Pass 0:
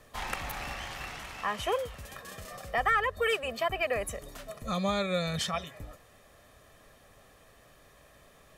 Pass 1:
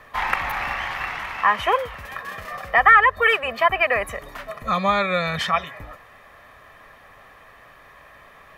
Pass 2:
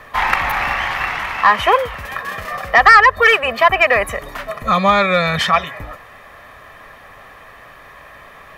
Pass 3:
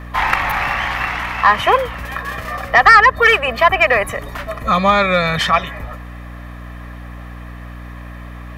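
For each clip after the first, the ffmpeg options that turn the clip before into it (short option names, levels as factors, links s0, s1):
-af "equalizer=f=1000:t=o:w=1:g=10,equalizer=f=2000:t=o:w=1:g=10,equalizer=f=8000:t=o:w=1:g=-8,volume=1.5"
-af "asoftclip=type=tanh:threshold=0.376,volume=2.37"
-af "aeval=exprs='val(0)+0.0282*(sin(2*PI*60*n/s)+sin(2*PI*2*60*n/s)/2+sin(2*PI*3*60*n/s)/3+sin(2*PI*4*60*n/s)/4+sin(2*PI*5*60*n/s)/5)':c=same"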